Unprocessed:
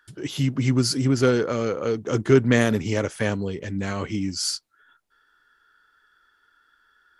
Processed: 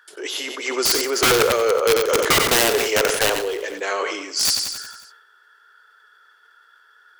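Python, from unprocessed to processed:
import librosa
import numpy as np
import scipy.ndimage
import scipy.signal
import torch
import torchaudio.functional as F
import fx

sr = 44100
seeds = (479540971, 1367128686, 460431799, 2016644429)

y = scipy.signal.sosfilt(scipy.signal.ellip(4, 1.0, 70, 410.0, 'highpass', fs=sr, output='sos'), x)
y = (np.mod(10.0 ** (18.5 / 20.0) * y + 1.0, 2.0) - 1.0) / 10.0 ** (18.5 / 20.0)
y = fx.echo_feedback(y, sr, ms=91, feedback_pct=55, wet_db=-13.0)
y = fx.sustainer(y, sr, db_per_s=49.0)
y = y * 10.0 ** (8.0 / 20.0)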